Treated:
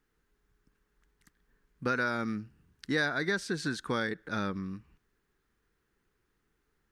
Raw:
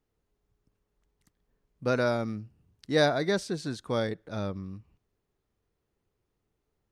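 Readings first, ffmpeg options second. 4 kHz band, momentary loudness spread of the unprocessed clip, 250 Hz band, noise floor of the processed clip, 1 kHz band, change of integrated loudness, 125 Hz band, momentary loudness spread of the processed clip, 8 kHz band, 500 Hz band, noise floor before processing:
-3.0 dB, 15 LU, -2.0 dB, -78 dBFS, -1.5 dB, -3.0 dB, -5.0 dB, 12 LU, -1.5 dB, -8.0 dB, -81 dBFS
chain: -af "equalizer=f=100:t=o:w=0.67:g=-9,equalizer=f=630:t=o:w=0.67:g=-9,equalizer=f=1.6k:t=o:w=0.67:g=10,acompressor=threshold=-32dB:ratio=4,volume=4dB"

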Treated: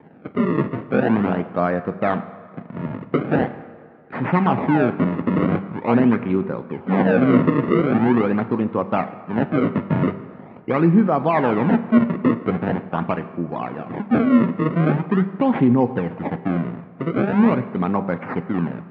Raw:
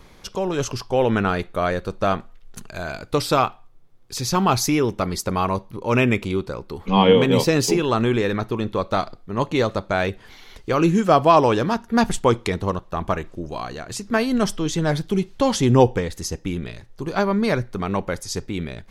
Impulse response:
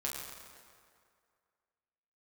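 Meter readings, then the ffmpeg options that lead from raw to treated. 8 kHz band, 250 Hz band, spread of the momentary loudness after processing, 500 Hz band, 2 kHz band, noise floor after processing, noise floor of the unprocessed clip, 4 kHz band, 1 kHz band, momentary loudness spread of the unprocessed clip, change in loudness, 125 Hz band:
under -40 dB, +5.0 dB, 11 LU, -1.5 dB, -1.0 dB, -43 dBFS, -48 dBFS, under -10 dB, -2.0 dB, 15 LU, +1.0 dB, +1.5 dB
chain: -filter_complex "[0:a]acrusher=samples=32:mix=1:aa=0.000001:lfo=1:lforange=51.2:lforate=0.43,alimiter=limit=-12dB:level=0:latency=1:release=222,highpass=f=120:w=0.5412,highpass=f=120:w=1.3066,equalizer=f=170:t=q:w=4:g=6,equalizer=f=250:t=q:w=4:g=8,equalizer=f=820:t=q:w=4:g=4,lowpass=f=2.2k:w=0.5412,lowpass=f=2.2k:w=1.3066,bandreject=f=195.5:t=h:w=4,bandreject=f=391:t=h:w=4,bandreject=f=586.5:t=h:w=4,bandreject=f=782:t=h:w=4,bandreject=f=977.5:t=h:w=4,bandreject=f=1.173k:t=h:w=4,bandreject=f=1.3685k:t=h:w=4,bandreject=f=1.564k:t=h:w=4,bandreject=f=1.7595k:t=h:w=4,bandreject=f=1.955k:t=h:w=4,bandreject=f=2.1505k:t=h:w=4,bandreject=f=2.346k:t=h:w=4,bandreject=f=2.5415k:t=h:w=4,bandreject=f=2.737k:t=h:w=4,bandreject=f=2.9325k:t=h:w=4,bandreject=f=3.128k:t=h:w=4,bandreject=f=3.3235k:t=h:w=4,bandreject=f=3.519k:t=h:w=4,bandreject=f=3.7145k:t=h:w=4,bandreject=f=3.91k:t=h:w=4,bandreject=f=4.1055k:t=h:w=4,bandreject=f=4.301k:t=h:w=4,bandreject=f=4.4965k:t=h:w=4,bandreject=f=4.692k:t=h:w=4,bandreject=f=4.8875k:t=h:w=4,bandreject=f=5.083k:t=h:w=4,bandreject=f=5.2785k:t=h:w=4,bandreject=f=5.474k:t=h:w=4,asplit=2[a][b];[1:a]atrim=start_sample=2205[c];[b][c]afir=irnorm=-1:irlink=0,volume=-12dB[d];[a][d]amix=inputs=2:normalize=0"

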